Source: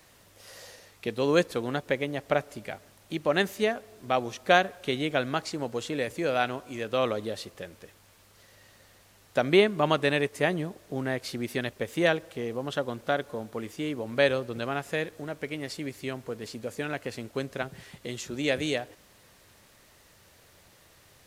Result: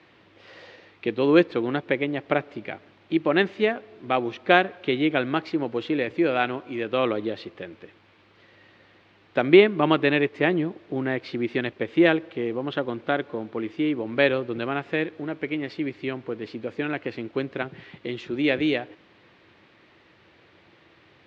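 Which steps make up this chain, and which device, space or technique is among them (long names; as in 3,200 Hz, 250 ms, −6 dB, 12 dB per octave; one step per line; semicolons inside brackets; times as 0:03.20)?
guitar cabinet (loudspeaker in its box 110–3,600 Hz, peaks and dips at 330 Hz +9 dB, 610 Hz −3 dB, 2,300 Hz +3 dB)
level +3 dB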